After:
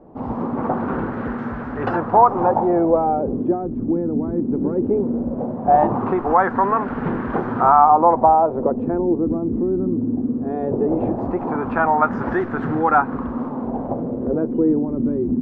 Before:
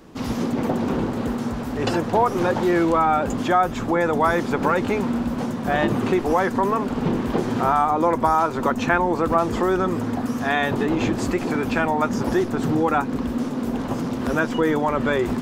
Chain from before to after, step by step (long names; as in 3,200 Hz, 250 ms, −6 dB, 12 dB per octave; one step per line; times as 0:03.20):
auto-filter low-pass sine 0.18 Hz 290–1,600 Hz
dynamic equaliser 770 Hz, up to +6 dB, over −29 dBFS, Q 2.6
level −1.5 dB